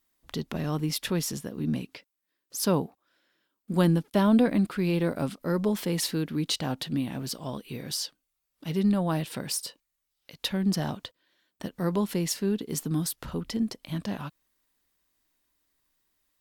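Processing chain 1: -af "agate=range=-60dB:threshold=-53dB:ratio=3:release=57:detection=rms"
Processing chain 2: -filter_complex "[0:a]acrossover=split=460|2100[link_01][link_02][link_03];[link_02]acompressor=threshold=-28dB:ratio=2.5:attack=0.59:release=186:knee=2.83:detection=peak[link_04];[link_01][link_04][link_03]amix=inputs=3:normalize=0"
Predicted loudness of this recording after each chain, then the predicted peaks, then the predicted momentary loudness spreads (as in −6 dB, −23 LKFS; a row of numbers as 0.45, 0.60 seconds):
−28.5, −29.0 LKFS; −12.5, −12.5 dBFS; 13, 13 LU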